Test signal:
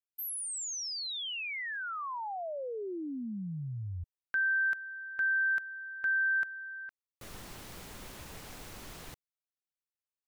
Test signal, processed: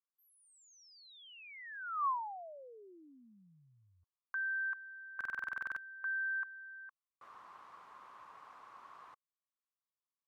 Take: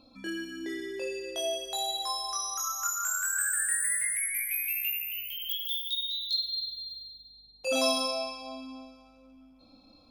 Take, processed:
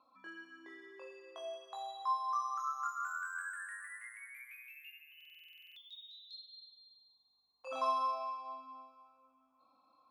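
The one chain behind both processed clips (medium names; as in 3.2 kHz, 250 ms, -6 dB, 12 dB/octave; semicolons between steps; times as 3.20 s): band-pass filter 1.1 kHz, Q 7; buffer glitch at 5.16 s, samples 2048, times 12; trim +6.5 dB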